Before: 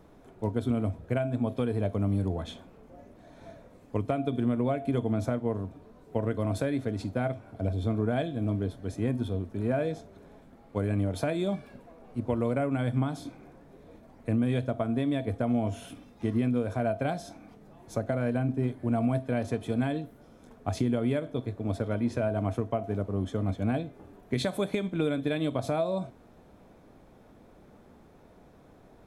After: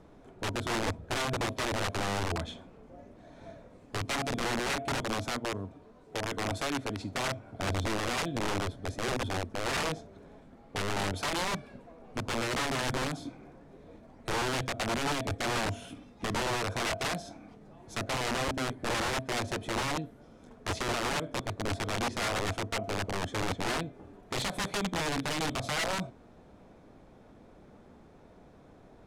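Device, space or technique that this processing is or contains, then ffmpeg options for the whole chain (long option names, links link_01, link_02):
overflowing digital effects unit: -filter_complex "[0:a]asettb=1/sr,asplit=3[link_01][link_02][link_03];[link_01]atrim=end=5.024[link_04];[link_02]atrim=start=5.02:end=7.12,asetpts=PTS-STARTPTS,afade=type=in:duration=0.004:curve=qsin,afade=type=out:start_time=2.096:duration=0.004:curve=qsin,lowshelf=frequency=300:gain=-5.5[link_05];[link_03]atrim=start=7.116[link_06];[link_04][link_05]acrossfade=duration=0.004:curve1=hsin:curve2=qsin[link_07];[link_07][link_06]acrossfade=duration=0.004:curve1=qsin:curve2=hsin,aeval=exprs='(mod(18.8*val(0)+1,2)-1)/18.8':channel_layout=same,lowpass=8700"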